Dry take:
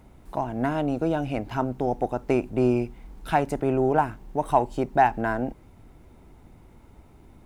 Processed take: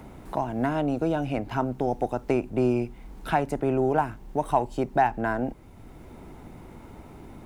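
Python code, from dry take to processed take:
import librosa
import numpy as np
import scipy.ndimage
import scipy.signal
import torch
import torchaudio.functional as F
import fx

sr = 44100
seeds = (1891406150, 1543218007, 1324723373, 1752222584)

y = fx.band_squash(x, sr, depth_pct=40)
y = F.gain(torch.from_numpy(y), -1.0).numpy()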